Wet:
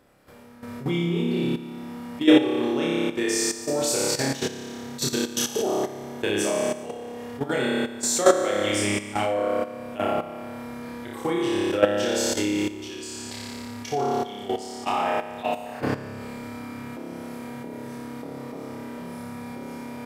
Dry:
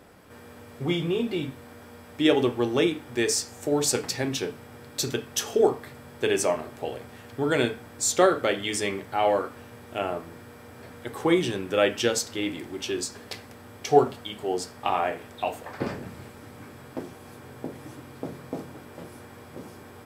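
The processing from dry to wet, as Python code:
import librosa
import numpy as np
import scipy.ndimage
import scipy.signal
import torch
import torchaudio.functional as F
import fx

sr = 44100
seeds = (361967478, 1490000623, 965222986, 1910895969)

y = fx.room_flutter(x, sr, wall_m=5.0, rt60_s=1.4)
y = fx.level_steps(y, sr, step_db=12)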